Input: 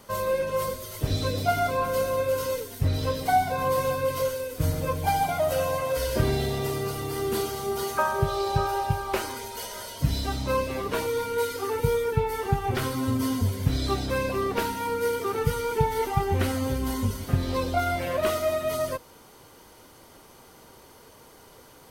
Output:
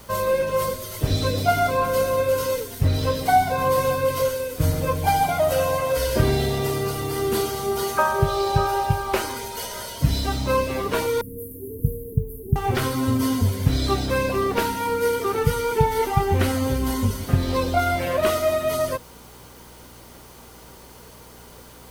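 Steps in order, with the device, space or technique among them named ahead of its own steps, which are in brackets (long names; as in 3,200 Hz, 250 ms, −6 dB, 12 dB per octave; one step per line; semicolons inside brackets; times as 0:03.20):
video cassette with head-switching buzz (hum with harmonics 60 Hz, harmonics 4, −55 dBFS; white noise bed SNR 31 dB)
0:11.21–0:12.56: inverse Chebyshev band-stop filter 1,100–4,200 Hz, stop band 70 dB
level +4.5 dB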